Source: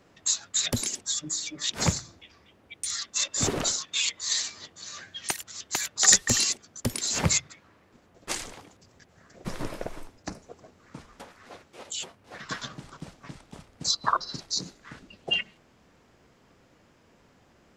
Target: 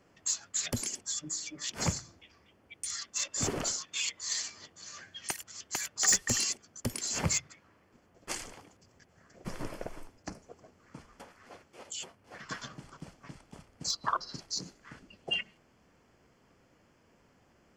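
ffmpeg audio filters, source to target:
ffmpeg -i in.wav -af "asoftclip=type=tanh:threshold=-11dB,bandreject=frequency=3800:width=5.5,volume=-5dB" out.wav

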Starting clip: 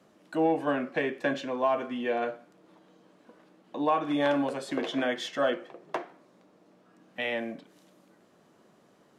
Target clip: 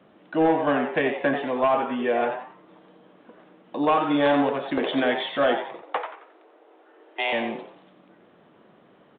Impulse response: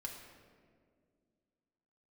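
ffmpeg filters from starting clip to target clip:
-filter_complex "[0:a]asettb=1/sr,asplit=3[link_01][link_02][link_03];[link_01]atrim=end=1.084[link_04];[link_02]atrim=start=1.08:end=2.2,asetpts=PTS-STARTPTS,afade=type=in:duration=0.004:curve=qsin,afade=type=out:start_time=1.116:duration=0.004:curve=qsin,acrossover=split=2600[link_05][link_06];[link_06]acompressor=threshold=-52dB:ratio=4:attack=1:release=60[link_07];[link_05][link_07]amix=inputs=2:normalize=0[link_08];[link_03]atrim=start=2.196[link_09];[link_04][link_08]acrossfade=duration=0.004:curve1=hsin:curve2=qsin[link_10];[link_10][link_09]acrossfade=duration=0.004:curve1=qsin:curve2=hsin,asoftclip=type=hard:threshold=-20.5dB,asettb=1/sr,asplit=3[link_11][link_12][link_13];[link_11]atrim=end=5.824[link_14];[link_12]atrim=start=5.82:end=7.33,asetpts=PTS-STARTPTS,afade=type=in:duration=0.004:curve=qsin,afade=type=out:start_time=1.506:duration=0.004:curve=qsin,afreqshift=140[link_15];[link_13]atrim=start=7.326[link_16];[link_14][link_15]acrossfade=duration=0.004:curve1=hsin:curve2=qsin[link_17];[link_17][link_16]acrossfade=duration=0.004:curve1=qsin:curve2=hsin,asplit=5[link_18][link_19][link_20][link_21][link_22];[link_19]adelay=89,afreqshift=150,volume=-8dB[link_23];[link_20]adelay=178,afreqshift=300,volume=-18.2dB[link_24];[link_21]adelay=267,afreqshift=450,volume=-28.3dB[link_25];[link_22]adelay=356,afreqshift=600,volume=-38.5dB[link_26];[link_18][link_23][link_24][link_25][link_26]amix=inputs=5:normalize=0,aresample=8000,aresample=44100,volume=5.5dB"

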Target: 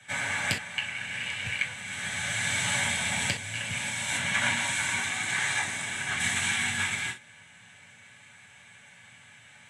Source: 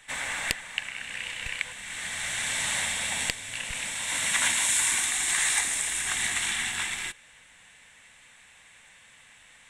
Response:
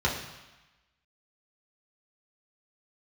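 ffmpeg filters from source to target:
-filter_complex "[0:a]asettb=1/sr,asplit=3[link_01][link_02][link_03];[link_01]atrim=end=4.174[link_04];[link_02]atrim=start=4.17:end=6.2,asetpts=PTS-STARTPTS,afade=type=in:duration=0.004:curve=qsin,afade=type=out:start_time=2.026:duration=0.004:curve=qsin,lowpass=frequency=3300:poles=1[link_05];[link_03]atrim=start=6.196[link_06];[link_04][link_05]acrossfade=duration=0.004:curve1=hsin:curve2=qsin[link_07];[link_07][link_06]acrossfade=duration=0.004:curve1=qsin:curve2=hsin[link_08];[1:a]atrim=start_sample=2205,afade=type=out:start_time=0.16:duration=0.01,atrim=end_sample=7497,asetrate=70560,aresample=44100[link_09];[link_08][link_09]afir=irnorm=-1:irlink=0,volume=-6dB"

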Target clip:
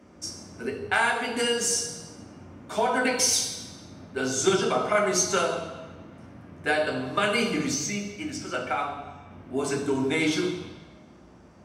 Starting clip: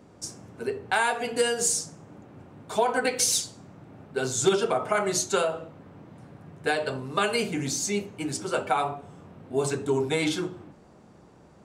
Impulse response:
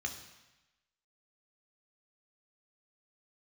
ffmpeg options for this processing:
-filter_complex "[0:a]asettb=1/sr,asplit=3[link_01][link_02][link_03];[link_01]atrim=end=7.744[link_04];[link_02]atrim=start=7.74:end=9.31,asetpts=PTS-STARTPTS,afade=type=in:duration=0.004:curve=qsin,afade=type=out:start_time=1.566:duration=0.004:curve=qsin,equalizer=frequency=160:width_type=o:width=0.67:gain=-6,equalizer=frequency=400:width_type=o:width=0.67:gain=-8,equalizer=frequency=1000:width_type=o:width=0.67:gain=-6,equalizer=frequency=4000:width_type=o:width=0.67:gain=-5,equalizer=frequency=10000:width_type=o:width=0.67:gain=-11[link_05];[link_03]atrim=start=9.306[link_06];[link_04][link_05]acrossfade=duration=0.004:curve1=hsin:curve2=qsin[link_07];[link_07][link_06]acrossfade=duration=0.004:curve1=qsin:curve2=hsin[link_08];[1:a]atrim=start_sample=2205,asetrate=37926,aresample=44100[link_09];[link_08][link_09]afir=irnorm=-1:irlink=0"

